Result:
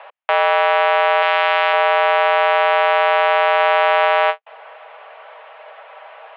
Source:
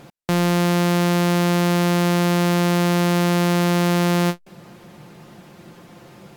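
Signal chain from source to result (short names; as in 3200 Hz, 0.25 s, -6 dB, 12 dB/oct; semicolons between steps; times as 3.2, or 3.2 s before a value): 1.22–1.73 tilt +2 dB/oct; mistuned SSB +270 Hz 310–2800 Hz; 3.6–4.05 fast leveller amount 100%; gain +8 dB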